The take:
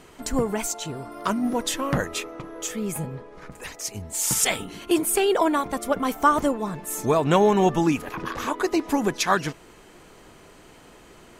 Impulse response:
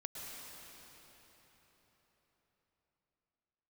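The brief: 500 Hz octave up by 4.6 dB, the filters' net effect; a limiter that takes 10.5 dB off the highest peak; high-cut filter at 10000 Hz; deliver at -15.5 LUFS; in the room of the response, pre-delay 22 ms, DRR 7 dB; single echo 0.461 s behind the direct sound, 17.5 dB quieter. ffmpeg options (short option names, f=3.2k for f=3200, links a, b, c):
-filter_complex "[0:a]lowpass=10k,equalizer=f=500:t=o:g=6,alimiter=limit=-13dB:level=0:latency=1,aecho=1:1:461:0.133,asplit=2[a][b];[1:a]atrim=start_sample=2205,adelay=22[c];[b][c]afir=irnorm=-1:irlink=0,volume=-6dB[d];[a][d]amix=inputs=2:normalize=0,volume=8.5dB"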